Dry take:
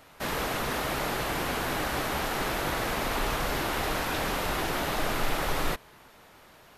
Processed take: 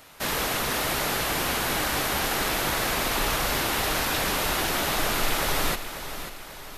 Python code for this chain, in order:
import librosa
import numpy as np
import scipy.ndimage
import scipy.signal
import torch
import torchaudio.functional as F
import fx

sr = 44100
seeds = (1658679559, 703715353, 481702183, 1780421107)

y = fx.high_shelf(x, sr, hz=2700.0, db=8.5)
y = fx.echo_feedback(y, sr, ms=541, feedback_pct=49, wet_db=-11)
y = F.gain(torch.from_numpy(y), 1.0).numpy()